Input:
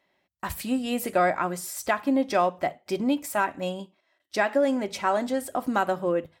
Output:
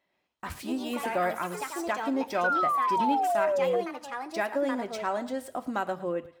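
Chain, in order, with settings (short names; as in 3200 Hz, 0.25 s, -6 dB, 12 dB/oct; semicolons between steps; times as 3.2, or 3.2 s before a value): median filter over 3 samples; thinning echo 0.11 s, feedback 32%, level -16 dB; echoes that change speed 0.118 s, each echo +4 st, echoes 3, each echo -6 dB; painted sound fall, 2.44–3.81, 460–1500 Hz -20 dBFS; gain -6 dB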